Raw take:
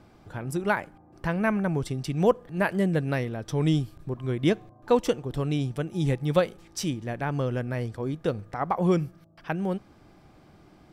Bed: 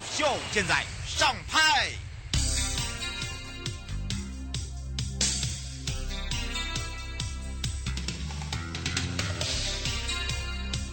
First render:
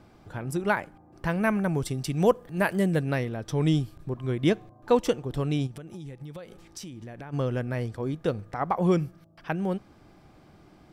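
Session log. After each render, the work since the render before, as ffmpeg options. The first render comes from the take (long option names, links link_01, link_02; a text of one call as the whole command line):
ffmpeg -i in.wav -filter_complex "[0:a]asettb=1/sr,asplit=3[link_01][link_02][link_03];[link_01]atrim=end=1.274[link_04];[link_02]atrim=start=1.27:end=3.03,asetpts=PTS-STARTPTS,afade=type=in:duration=0.004:curve=qsin,afade=type=out:start_time=1.756:duration=0.004:curve=qsin,highshelf=frequency=7400:gain=9.5[link_05];[link_03]atrim=start=3.026[link_06];[link_04][link_05]acrossfade=duration=0.004:curve1=hsin:curve2=qsin[link_07];[link_07][link_06]acrossfade=duration=0.004:curve1=qsin:curve2=hsin,asplit=3[link_08][link_09][link_10];[link_08]afade=type=out:start_time=5.66:duration=0.02[link_11];[link_09]acompressor=threshold=-36dB:ratio=16:attack=3.2:release=140:knee=1:detection=peak,afade=type=in:start_time=5.66:duration=0.02,afade=type=out:start_time=7.32:duration=0.02[link_12];[link_10]afade=type=in:start_time=7.32:duration=0.02[link_13];[link_11][link_12][link_13]amix=inputs=3:normalize=0" out.wav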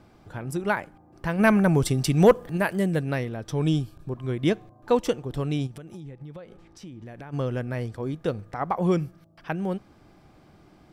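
ffmpeg -i in.wav -filter_complex "[0:a]asplit=3[link_01][link_02][link_03];[link_01]afade=type=out:start_time=1.38:duration=0.02[link_04];[link_02]aeval=exprs='0.422*sin(PI/2*1.41*val(0)/0.422)':channel_layout=same,afade=type=in:start_time=1.38:duration=0.02,afade=type=out:start_time=2.56:duration=0.02[link_05];[link_03]afade=type=in:start_time=2.56:duration=0.02[link_06];[link_04][link_05][link_06]amix=inputs=3:normalize=0,asettb=1/sr,asplit=3[link_07][link_08][link_09];[link_07]atrim=end=3.584[link_10];[link_08]atrim=start=3.58:end=4.12,asetpts=PTS-STARTPTS,afade=type=in:duration=0.004:curve=qsin,afade=type=out:start_time=0.536:duration=0.004:curve=qsin,asuperstop=centerf=2000:order=8:qfactor=6.1[link_11];[link_09]atrim=start=4.116[link_12];[link_10][link_11]acrossfade=duration=0.004:curve1=hsin:curve2=qsin[link_13];[link_13][link_12]acrossfade=duration=0.004:curve1=qsin:curve2=hsin,asettb=1/sr,asplit=3[link_14][link_15][link_16];[link_14]atrim=end=6.004[link_17];[link_15]atrim=start=6:end=7.06,asetpts=PTS-STARTPTS,afade=type=in:duration=0.004:curve=qsin,afade=type=out:start_time=1.056:duration=0.004:curve=qsin,lowpass=frequency=2000:poles=1[link_18];[link_16]atrim=start=7.056[link_19];[link_17][link_18]acrossfade=duration=0.004:curve1=hsin:curve2=qsin[link_20];[link_20][link_19]acrossfade=duration=0.004:curve1=qsin:curve2=hsin" out.wav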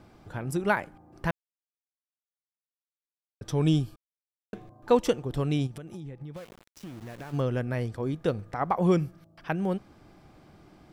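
ffmpeg -i in.wav -filter_complex "[0:a]asettb=1/sr,asplit=3[link_01][link_02][link_03];[link_01]atrim=end=6.364[link_04];[link_02]atrim=start=6.36:end=7.41,asetpts=PTS-STARTPTS,afade=type=in:duration=0.004:curve=qsin,afade=type=out:start_time=1.046:duration=0.004:curve=qsin,aeval=exprs='val(0)*gte(abs(val(0)),0.00562)':channel_layout=same[link_05];[link_03]atrim=start=7.406[link_06];[link_04][link_05]acrossfade=duration=0.004:curve1=hsin:curve2=qsin[link_07];[link_07][link_06]acrossfade=duration=0.004:curve1=qsin:curve2=hsin,asplit=5[link_08][link_09][link_10][link_11][link_12];[link_08]atrim=end=1.31,asetpts=PTS-STARTPTS,afade=type=out:start_time=1.306:duration=0.004:curve=hsin[link_13];[link_09]atrim=start=1.31:end=3.41,asetpts=PTS-STARTPTS,volume=0[link_14];[link_10]atrim=start=3.41:end=3.96,asetpts=PTS-STARTPTS,afade=type=in:duration=0.004:curve=hsin,afade=type=out:start_time=0.546:duration=0.004:curve=hsin[link_15];[link_11]atrim=start=3.96:end=4.53,asetpts=PTS-STARTPTS,volume=0[link_16];[link_12]atrim=start=4.53,asetpts=PTS-STARTPTS,afade=type=in:duration=0.004:curve=hsin[link_17];[link_13][link_14][link_15][link_16][link_17]concat=n=5:v=0:a=1" out.wav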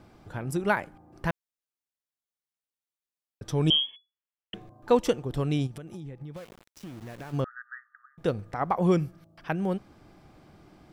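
ffmpeg -i in.wav -filter_complex "[0:a]asettb=1/sr,asplit=3[link_01][link_02][link_03];[link_01]atrim=end=3.704[link_04];[link_02]atrim=start=3.7:end=4.54,asetpts=PTS-STARTPTS,afade=type=in:duration=0.004:curve=qsin,afade=type=out:start_time=0.836:duration=0.004:curve=qsin,lowpass=frequency=2900:width_type=q:width=0.5098,lowpass=frequency=2900:width_type=q:width=0.6013,lowpass=frequency=2900:width_type=q:width=0.9,lowpass=frequency=2900:width_type=q:width=2.563,afreqshift=-3400[link_05];[link_03]atrim=start=4.536[link_06];[link_04][link_05]acrossfade=duration=0.004:curve1=hsin:curve2=qsin[link_07];[link_07][link_06]acrossfade=duration=0.004:curve1=qsin:curve2=hsin,asettb=1/sr,asplit=3[link_08][link_09][link_10];[link_08]atrim=end=7.444[link_11];[link_09]atrim=start=7.44:end=8.18,asetpts=PTS-STARTPTS,afade=type=in:duration=0.004:curve=qsin,afade=type=out:start_time=0.736:duration=0.004:curve=qsin,asuperpass=centerf=1500:order=20:qfactor=2.1[link_12];[link_10]atrim=start=8.176[link_13];[link_11][link_12]acrossfade=duration=0.004:curve1=hsin:curve2=qsin[link_14];[link_14][link_13]acrossfade=duration=0.004:curve1=qsin:curve2=hsin" out.wav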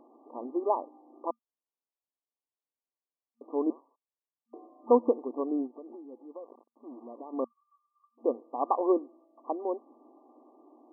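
ffmpeg -i in.wav -af "afftfilt=real='re*between(b*sr/4096,230,1200)':imag='im*between(b*sr/4096,230,1200)':win_size=4096:overlap=0.75" out.wav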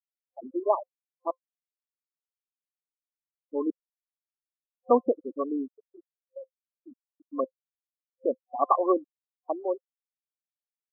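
ffmpeg -i in.wav -af "afftfilt=real='re*gte(hypot(re,im),0.0794)':imag='im*gte(hypot(re,im),0.0794)':win_size=1024:overlap=0.75,superequalizer=8b=2:10b=3.55" out.wav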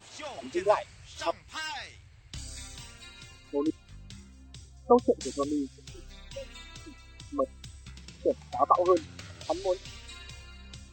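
ffmpeg -i in.wav -i bed.wav -filter_complex "[1:a]volume=-14.5dB[link_01];[0:a][link_01]amix=inputs=2:normalize=0" out.wav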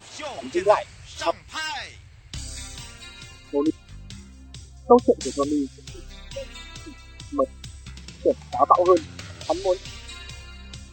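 ffmpeg -i in.wav -af "volume=6.5dB" out.wav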